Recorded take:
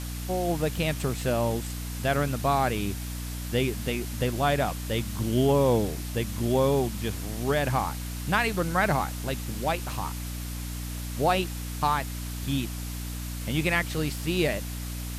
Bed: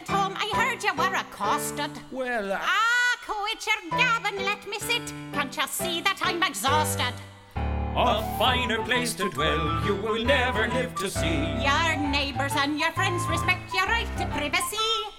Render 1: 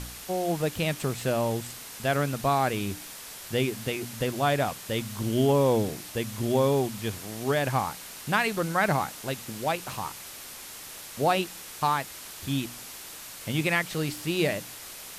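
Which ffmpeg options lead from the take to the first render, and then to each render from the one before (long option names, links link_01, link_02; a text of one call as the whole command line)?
ffmpeg -i in.wav -af "bandreject=frequency=60:width_type=h:width=4,bandreject=frequency=120:width_type=h:width=4,bandreject=frequency=180:width_type=h:width=4,bandreject=frequency=240:width_type=h:width=4,bandreject=frequency=300:width_type=h:width=4" out.wav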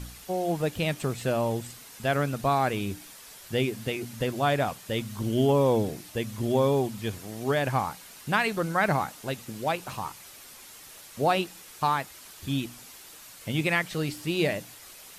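ffmpeg -i in.wav -af "afftdn=noise_reduction=7:noise_floor=-43" out.wav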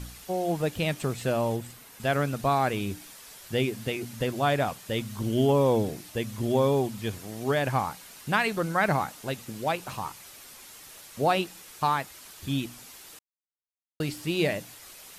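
ffmpeg -i in.wav -filter_complex "[0:a]asettb=1/sr,asplit=3[link_01][link_02][link_03];[link_01]atrim=end=1.564[link_04];[link_02]atrim=start=1.56:end=2,asetpts=PTS-STARTPTS,afade=type=in:duration=0.004:curve=qsin,afade=type=out:start_time=0.436:duration=0.004:curve=qsin,equalizer=frequency=5900:width=0.65:gain=-5.5[link_05];[link_03]atrim=start=1.996[link_06];[link_04][link_05]acrossfade=duration=0.004:curve1=hsin:curve2=qsin[link_07];[link_07][link_06]acrossfade=duration=0.004:curve1=qsin:curve2=hsin,asplit=3[link_08][link_09][link_10];[link_08]atrim=end=13.19,asetpts=PTS-STARTPTS,afade=type=out:start_time=13.186:duration=0.004:curve=hsin[link_11];[link_09]atrim=start=13.19:end=14,asetpts=PTS-STARTPTS,volume=0[link_12];[link_10]atrim=start=14,asetpts=PTS-STARTPTS,afade=type=in:duration=0.004:curve=hsin[link_13];[link_11][link_12][link_13]concat=n=3:v=0:a=1" out.wav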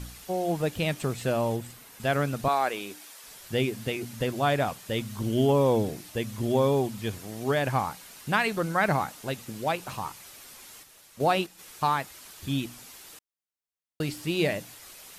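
ffmpeg -i in.wav -filter_complex "[0:a]asettb=1/sr,asplit=3[link_01][link_02][link_03];[link_01]atrim=end=2.484[link_04];[link_02]atrim=start=2.48:end=3.24,asetpts=PTS-STARTPTS,afade=type=in:duration=0.004:curve=qsin,afade=type=out:start_time=0.756:duration=0.004:curve=qsin,highpass=410[link_05];[link_03]atrim=start=3.236[link_06];[link_04][link_05]acrossfade=duration=0.004:curve1=hsin:curve2=qsin[link_07];[link_07][link_06]acrossfade=duration=0.004:curve1=qsin:curve2=hsin,asplit=3[link_08][link_09][link_10];[link_08]afade=type=out:start_time=10.82:duration=0.02[link_11];[link_09]agate=range=-7dB:threshold=-36dB:ratio=16:release=100:detection=peak,afade=type=in:start_time=10.82:duration=0.02,afade=type=out:start_time=11.58:duration=0.02[link_12];[link_10]afade=type=in:start_time=11.58:duration=0.02[link_13];[link_11][link_12][link_13]amix=inputs=3:normalize=0" out.wav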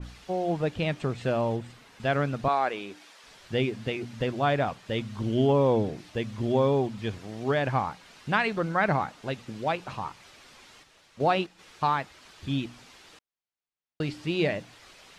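ffmpeg -i in.wav -af "lowpass=4400,adynamicequalizer=threshold=0.00794:dfrequency=2300:dqfactor=0.7:tfrequency=2300:tqfactor=0.7:attack=5:release=100:ratio=0.375:range=1.5:mode=cutabove:tftype=highshelf" out.wav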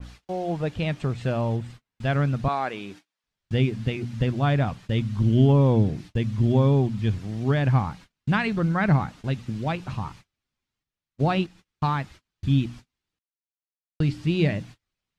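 ffmpeg -i in.wav -af "agate=range=-35dB:threshold=-46dB:ratio=16:detection=peak,asubboost=boost=4.5:cutoff=230" out.wav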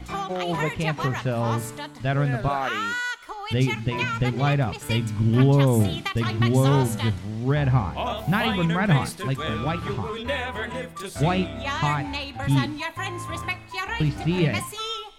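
ffmpeg -i in.wav -i bed.wav -filter_complex "[1:a]volume=-5.5dB[link_01];[0:a][link_01]amix=inputs=2:normalize=0" out.wav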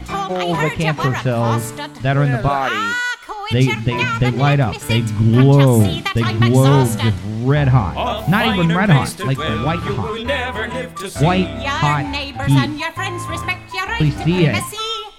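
ffmpeg -i in.wav -af "volume=7.5dB,alimiter=limit=-1dB:level=0:latency=1" out.wav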